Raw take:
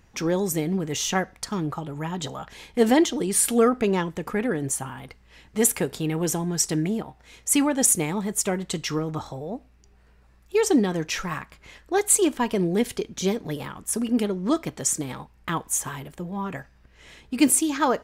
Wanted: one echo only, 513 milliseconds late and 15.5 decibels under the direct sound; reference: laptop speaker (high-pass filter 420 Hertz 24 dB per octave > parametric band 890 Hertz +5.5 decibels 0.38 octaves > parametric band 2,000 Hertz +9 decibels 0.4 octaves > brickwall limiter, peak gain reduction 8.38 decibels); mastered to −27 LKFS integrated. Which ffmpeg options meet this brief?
ffmpeg -i in.wav -af "highpass=frequency=420:width=0.5412,highpass=frequency=420:width=1.3066,equalizer=frequency=890:width_type=o:width=0.38:gain=5.5,equalizer=frequency=2000:width_type=o:width=0.4:gain=9,aecho=1:1:513:0.168,volume=1dB,alimiter=limit=-13.5dB:level=0:latency=1" out.wav

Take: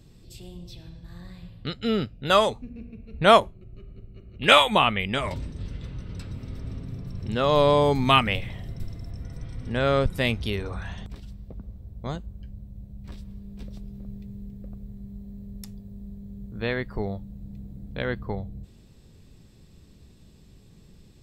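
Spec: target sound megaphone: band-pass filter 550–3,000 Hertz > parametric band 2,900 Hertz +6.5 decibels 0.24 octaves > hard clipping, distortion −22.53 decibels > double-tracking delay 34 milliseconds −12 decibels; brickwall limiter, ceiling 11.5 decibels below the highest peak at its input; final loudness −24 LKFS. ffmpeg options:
ffmpeg -i in.wav -filter_complex "[0:a]alimiter=limit=-13.5dB:level=0:latency=1,highpass=550,lowpass=3000,equalizer=frequency=2900:width_type=o:width=0.24:gain=6.5,asoftclip=type=hard:threshold=-16dB,asplit=2[link_01][link_02];[link_02]adelay=34,volume=-12dB[link_03];[link_01][link_03]amix=inputs=2:normalize=0,volume=6dB" out.wav

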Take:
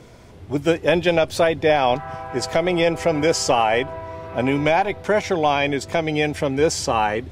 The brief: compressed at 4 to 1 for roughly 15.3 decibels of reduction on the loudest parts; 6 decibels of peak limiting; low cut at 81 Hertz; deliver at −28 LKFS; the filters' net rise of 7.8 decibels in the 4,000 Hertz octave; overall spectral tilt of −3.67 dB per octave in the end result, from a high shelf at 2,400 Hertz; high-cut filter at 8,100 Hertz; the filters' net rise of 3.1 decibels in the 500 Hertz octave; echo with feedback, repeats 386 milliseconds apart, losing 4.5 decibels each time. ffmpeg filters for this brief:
ffmpeg -i in.wav -af "highpass=81,lowpass=8100,equalizer=frequency=500:width_type=o:gain=3.5,highshelf=frequency=2400:gain=3.5,equalizer=frequency=4000:width_type=o:gain=7.5,acompressor=threshold=-29dB:ratio=4,alimiter=limit=-20.5dB:level=0:latency=1,aecho=1:1:386|772|1158|1544|1930|2316|2702|3088|3474:0.596|0.357|0.214|0.129|0.0772|0.0463|0.0278|0.0167|0.01,volume=1.5dB" out.wav

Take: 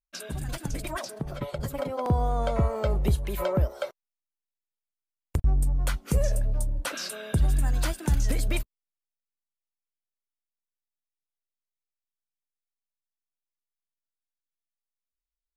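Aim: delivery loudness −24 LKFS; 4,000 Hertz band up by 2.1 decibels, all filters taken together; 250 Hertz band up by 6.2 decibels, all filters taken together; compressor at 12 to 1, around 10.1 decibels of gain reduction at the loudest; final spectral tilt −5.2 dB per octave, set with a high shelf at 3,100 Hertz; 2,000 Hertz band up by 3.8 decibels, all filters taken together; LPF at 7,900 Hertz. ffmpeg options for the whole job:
ffmpeg -i in.wav -af "lowpass=7900,equalizer=frequency=250:width_type=o:gain=8.5,equalizer=frequency=2000:width_type=o:gain=5.5,highshelf=frequency=3100:gain=-5.5,equalizer=frequency=4000:width_type=o:gain=5.5,acompressor=threshold=-26dB:ratio=12,volume=9dB" out.wav

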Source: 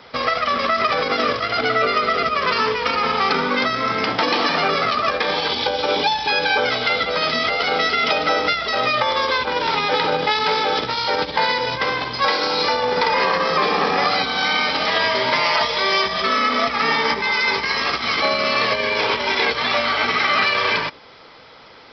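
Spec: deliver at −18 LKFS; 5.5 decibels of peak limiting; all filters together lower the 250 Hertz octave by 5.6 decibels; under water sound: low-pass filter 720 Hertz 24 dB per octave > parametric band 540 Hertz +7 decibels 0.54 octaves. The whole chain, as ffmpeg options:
ffmpeg -i in.wav -af "equalizer=frequency=250:width_type=o:gain=-8,alimiter=limit=-10dB:level=0:latency=1,lowpass=frequency=720:width=0.5412,lowpass=frequency=720:width=1.3066,equalizer=frequency=540:width_type=o:width=0.54:gain=7,volume=6.5dB" out.wav

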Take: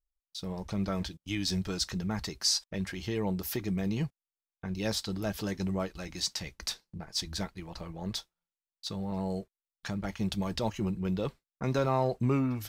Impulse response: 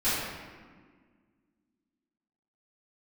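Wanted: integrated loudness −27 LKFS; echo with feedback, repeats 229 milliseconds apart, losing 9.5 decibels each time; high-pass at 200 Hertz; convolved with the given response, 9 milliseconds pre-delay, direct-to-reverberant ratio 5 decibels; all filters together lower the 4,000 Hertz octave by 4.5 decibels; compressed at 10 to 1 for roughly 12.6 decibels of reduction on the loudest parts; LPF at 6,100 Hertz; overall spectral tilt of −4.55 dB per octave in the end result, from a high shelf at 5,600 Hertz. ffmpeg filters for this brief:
-filter_complex "[0:a]highpass=200,lowpass=6100,equalizer=frequency=4000:width_type=o:gain=-6,highshelf=frequency=5600:gain=3.5,acompressor=threshold=-37dB:ratio=10,aecho=1:1:229|458|687|916:0.335|0.111|0.0365|0.012,asplit=2[link_01][link_02];[1:a]atrim=start_sample=2205,adelay=9[link_03];[link_02][link_03]afir=irnorm=-1:irlink=0,volume=-17.5dB[link_04];[link_01][link_04]amix=inputs=2:normalize=0,volume=14dB"

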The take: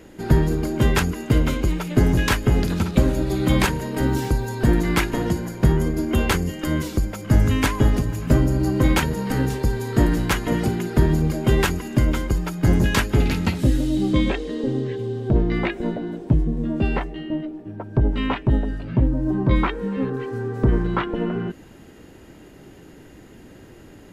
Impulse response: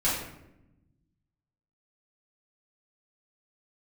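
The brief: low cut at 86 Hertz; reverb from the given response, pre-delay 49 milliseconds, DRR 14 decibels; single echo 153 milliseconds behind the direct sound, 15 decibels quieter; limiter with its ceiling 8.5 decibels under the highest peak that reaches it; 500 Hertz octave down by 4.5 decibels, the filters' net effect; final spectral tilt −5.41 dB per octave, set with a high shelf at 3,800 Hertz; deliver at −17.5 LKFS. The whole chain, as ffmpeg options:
-filter_complex "[0:a]highpass=86,equalizer=frequency=500:width_type=o:gain=-6.5,highshelf=frequency=3800:gain=6,alimiter=limit=-12.5dB:level=0:latency=1,aecho=1:1:153:0.178,asplit=2[link_01][link_02];[1:a]atrim=start_sample=2205,adelay=49[link_03];[link_02][link_03]afir=irnorm=-1:irlink=0,volume=-25dB[link_04];[link_01][link_04]amix=inputs=2:normalize=0,volume=7.5dB"

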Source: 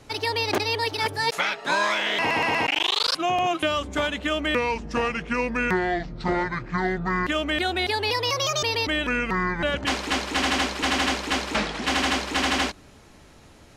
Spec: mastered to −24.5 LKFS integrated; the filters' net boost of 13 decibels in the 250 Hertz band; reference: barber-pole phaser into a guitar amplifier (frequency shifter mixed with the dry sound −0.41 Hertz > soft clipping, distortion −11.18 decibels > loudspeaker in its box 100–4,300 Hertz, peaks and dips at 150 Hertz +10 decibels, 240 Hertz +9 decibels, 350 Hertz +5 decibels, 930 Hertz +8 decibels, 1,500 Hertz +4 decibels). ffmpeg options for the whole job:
ffmpeg -i in.wav -filter_complex "[0:a]equalizer=frequency=250:width_type=o:gain=7.5,asplit=2[link_01][link_02];[link_02]afreqshift=-0.41[link_03];[link_01][link_03]amix=inputs=2:normalize=1,asoftclip=threshold=-24dB,highpass=100,equalizer=frequency=150:width_type=q:width=4:gain=10,equalizer=frequency=240:width_type=q:width=4:gain=9,equalizer=frequency=350:width_type=q:width=4:gain=5,equalizer=frequency=930:width_type=q:width=4:gain=8,equalizer=frequency=1500:width_type=q:width=4:gain=4,lowpass=frequency=4300:width=0.5412,lowpass=frequency=4300:width=1.3066,volume=1dB" out.wav

